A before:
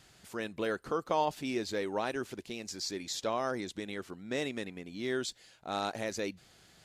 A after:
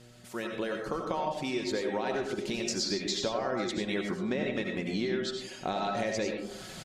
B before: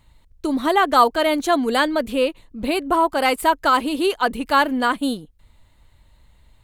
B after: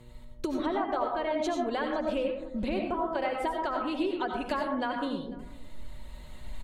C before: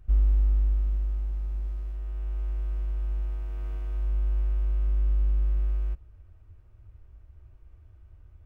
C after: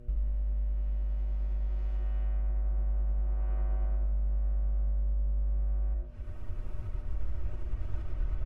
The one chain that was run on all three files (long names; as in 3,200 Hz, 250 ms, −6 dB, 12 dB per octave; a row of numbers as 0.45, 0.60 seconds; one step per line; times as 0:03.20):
camcorder AGC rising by 5.3 dB per second
treble cut that deepens with the level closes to 1,300 Hz, closed at −12 dBFS
reverb reduction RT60 0.61 s
comb filter 5.4 ms, depth 33%
dynamic equaliser 1,300 Hz, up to −5 dB, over −39 dBFS, Q 3.5
downward compressor 5 to 1, threshold −31 dBFS
hum with harmonics 120 Hz, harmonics 5, −55 dBFS −4 dB per octave
on a send: single-tap delay 495 ms −23 dB
on the sum: comb and all-pass reverb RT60 0.71 s, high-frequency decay 0.35×, pre-delay 50 ms, DRR 2 dB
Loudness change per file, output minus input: +3.5, −11.5, −4.5 LU